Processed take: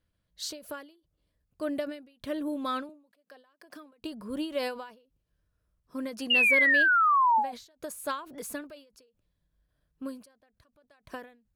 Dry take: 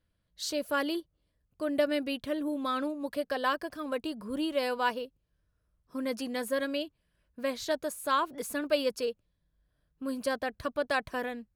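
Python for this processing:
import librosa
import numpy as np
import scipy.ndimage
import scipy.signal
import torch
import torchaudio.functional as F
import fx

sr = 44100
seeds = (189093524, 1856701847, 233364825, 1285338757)

y = fx.highpass(x, sr, hz=200.0, slope=24, at=(2.89, 3.93))
y = fx.spec_paint(y, sr, seeds[0], shape='fall', start_s=6.3, length_s=1.22, low_hz=750.0, high_hz=2900.0, level_db=-22.0)
y = fx.end_taper(y, sr, db_per_s=120.0)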